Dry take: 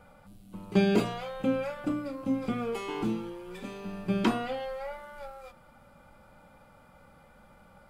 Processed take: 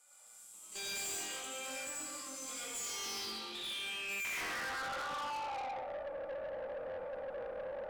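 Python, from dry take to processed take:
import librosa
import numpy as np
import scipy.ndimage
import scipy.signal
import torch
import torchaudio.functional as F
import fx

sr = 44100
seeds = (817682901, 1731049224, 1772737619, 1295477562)

y = fx.reverse_delay(x, sr, ms=103, wet_db=-8.0)
y = scipy.signal.sosfilt(scipy.signal.butter(2, 260.0, 'highpass', fs=sr, output='sos'), y)
y = fx.high_shelf(y, sr, hz=8800.0, db=10.5)
y = fx.notch(y, sr, hz=6700.0, q=22.0)
y = fx.room_flutter(y, sr, wall_m=3.9, rt60_s=0.25)
y = fx.rev_freeverb(y, sr, rt60_s=1.3, hf_ratio=0.65, predelay_ms=45, drr_db=-6.0)
y = fx.filter_sweep_bandpass(y, sr, from_hz=7400.0, to_hz=530.0, start_s=2.75, end_s=6.18, q=7.3)
y = fx.rider(y, sr, range_db=5, speed_s=2.0)
y = fx.tube_stage(y, sr, drive_db=53.0, bias=0.25)
y = y * librosa.db_to_amplitude(15.0)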